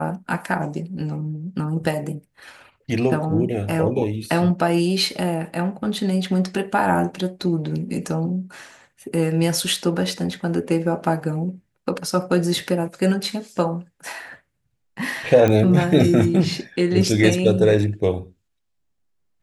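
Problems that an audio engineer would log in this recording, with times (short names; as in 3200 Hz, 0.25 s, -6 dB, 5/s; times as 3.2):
15.48 pop -8 dBFS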